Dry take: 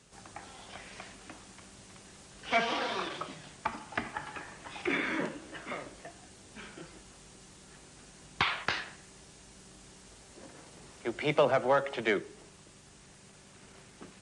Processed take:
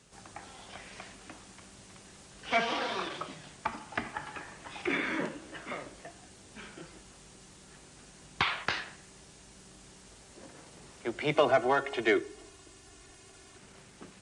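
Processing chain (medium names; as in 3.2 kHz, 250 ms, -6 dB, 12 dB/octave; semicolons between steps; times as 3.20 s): 11.34–13.58 s: comb 2.8 ms, depth 75%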